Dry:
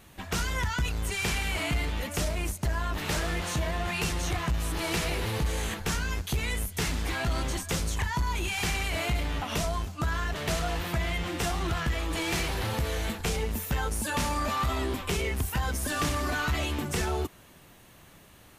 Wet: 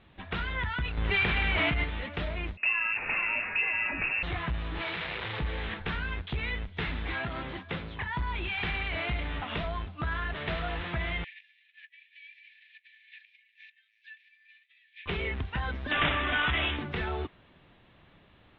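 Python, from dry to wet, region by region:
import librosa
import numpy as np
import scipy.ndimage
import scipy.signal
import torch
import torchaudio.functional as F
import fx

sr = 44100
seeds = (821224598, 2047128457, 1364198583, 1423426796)

y = fx.chain(x, sr, fx.self_delay(depth_ms=0.055),
    fx.high_shelf(hz=4600.0, db=-5.0),
    fx.env_flatten(amount_pct=100), at=(0.97, 1.84))
y = fx.chain(y, sr, fx.freq_invert(carrier_hz=2700),
    fx.quant_float(bits=4), at=(2.57, 4.23))
y = fx.chain(y, sr, fx.clip_1bit(),
    fx.highpass(hz=110.0, slope=12),
    fx.peak_eq(hz=270.0, db=-7.5, octaves=1.3), at=(4.81, 5.39))
y = fx.chain(y, sr, fx.highpass(hz=96.0, slope=12),
    fx.air_absorb(metres=110.0), at=(7.19, 8.13))
y = fx.chain(y, sr, fx.over_compress(threshold_db=-35.0, ratio=-0.5),
    fx.cheby_ripple_highpass(hz=1700.0, ripple_db=9),
    fx.air_absorb(metres=85.0), at=(11.24, 15.06))
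y = fx.chain(y, sr, fx.high_shelf(hz=2100.0, db=10.5),
    fx.resample_bad(factor=6, down='none', up='filtered'), at=(15.91, 16.77))
y = scipy.signal.sosfilt(scipy.signal.cheby1(5, 1.0, 3700.0, 'lowpass', fs=sr, output='sos'), y)
y = fx.dynamic_eq(y, sr, hz=1800.0, q=0.94, threshold_db=-44.0, ratio=4.0, max_db=5)
y = y * 10.0 ** (-4.0 / 20.0)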